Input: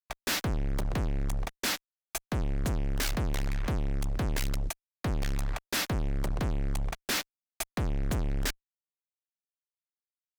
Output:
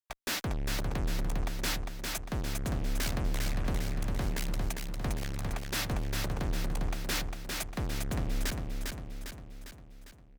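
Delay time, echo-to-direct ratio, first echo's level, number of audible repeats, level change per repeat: 0.402 s, -2.5 dB, -4.0 dB, 6, -5.0 dB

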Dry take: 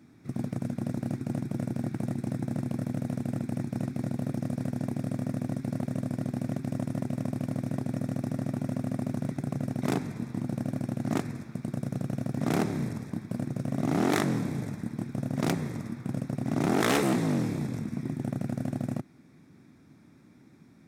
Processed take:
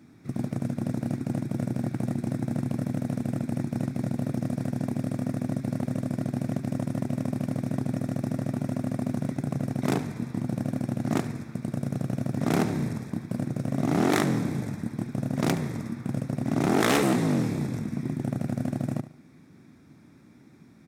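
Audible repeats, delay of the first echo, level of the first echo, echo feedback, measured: 2, 72 ms, -14.5 dB, 30%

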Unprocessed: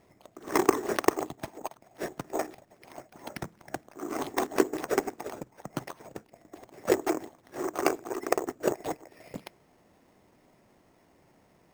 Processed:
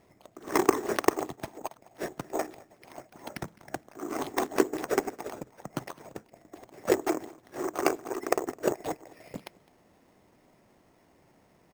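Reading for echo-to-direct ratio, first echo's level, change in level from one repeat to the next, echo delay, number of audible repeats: -23.0 dB, -23.0 dB, no steady repeat, 0.209 s, 1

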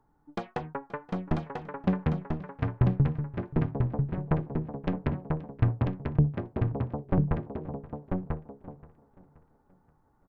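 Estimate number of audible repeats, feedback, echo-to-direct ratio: 6, no steady repeat, -4.0 dB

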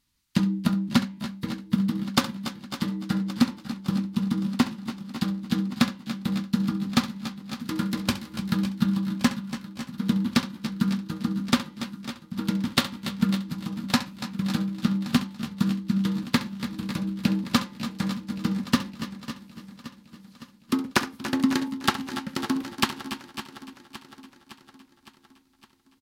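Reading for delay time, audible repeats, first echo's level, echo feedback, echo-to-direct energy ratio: 67 ms, 11, -14.0 dB, no steady repeat, -7.0 dB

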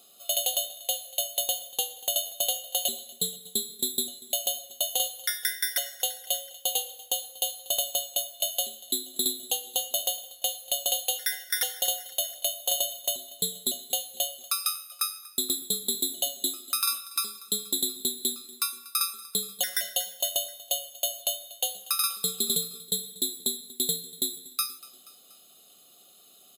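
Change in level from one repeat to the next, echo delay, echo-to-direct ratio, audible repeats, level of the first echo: -4.5 dB, 0.239 s, -18.5 dB, 3, -20.0 dB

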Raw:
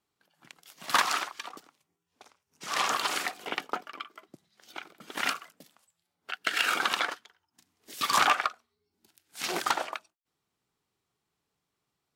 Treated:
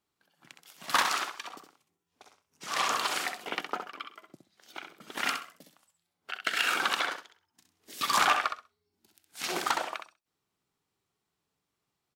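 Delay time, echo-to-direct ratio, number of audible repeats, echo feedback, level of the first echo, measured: 65 ms, -7.0 dB, 2, 19%, -7.0 dB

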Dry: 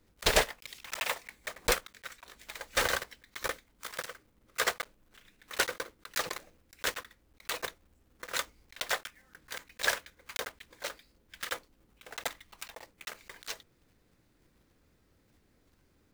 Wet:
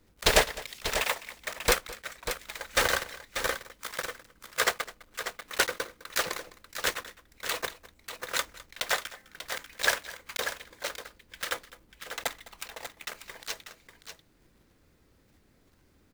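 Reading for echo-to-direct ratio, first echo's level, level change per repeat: -9.0 dB, -19.0 dB, no steady repeat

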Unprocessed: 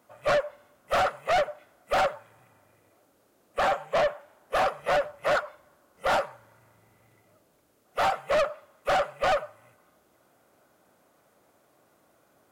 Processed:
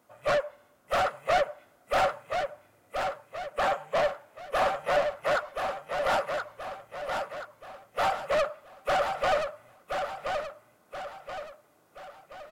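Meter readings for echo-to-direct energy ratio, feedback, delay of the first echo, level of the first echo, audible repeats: -4.5 dB, 44%, 1.027 s, -5.5 dB, 5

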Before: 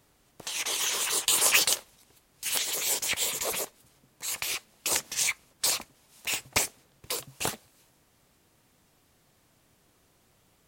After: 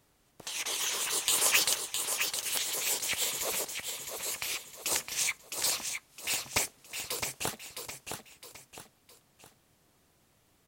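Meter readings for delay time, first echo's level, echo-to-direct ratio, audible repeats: 0.662 s, -6.0 dB, -5.5 dB, 3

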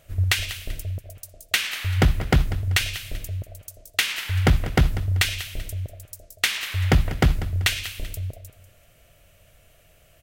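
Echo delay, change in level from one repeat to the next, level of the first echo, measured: 0.193 s, -9.0 dB, -14.5 dB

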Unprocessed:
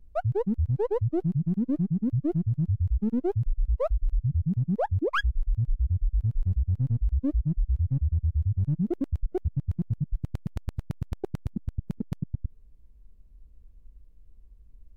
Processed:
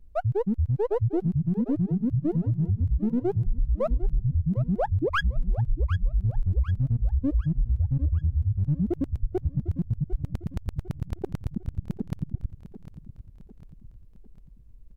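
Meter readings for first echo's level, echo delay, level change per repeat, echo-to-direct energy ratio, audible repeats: -14.0 dB, 0.751 s, -6.5 dB, -13.0 dB, 4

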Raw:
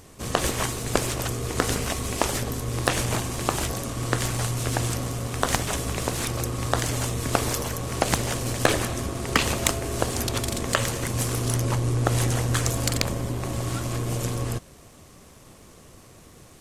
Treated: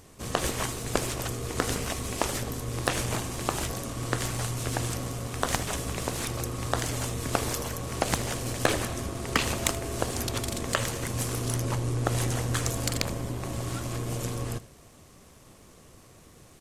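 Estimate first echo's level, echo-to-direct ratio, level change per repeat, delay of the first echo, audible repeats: -18.0 dB, -18.0 dB, no steady repeat, 79 ms, 1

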